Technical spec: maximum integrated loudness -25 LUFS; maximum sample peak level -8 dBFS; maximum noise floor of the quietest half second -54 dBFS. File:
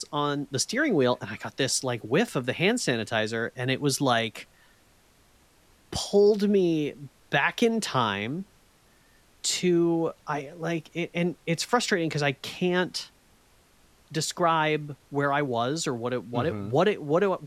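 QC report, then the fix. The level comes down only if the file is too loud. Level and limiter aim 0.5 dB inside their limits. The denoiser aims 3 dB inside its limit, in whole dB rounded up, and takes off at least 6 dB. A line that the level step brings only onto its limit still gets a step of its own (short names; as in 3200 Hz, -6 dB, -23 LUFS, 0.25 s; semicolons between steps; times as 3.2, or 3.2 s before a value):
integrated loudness -26.5 LUFS: OK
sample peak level -9.5 dBFS: OK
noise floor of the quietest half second -60 dBFS: OK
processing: none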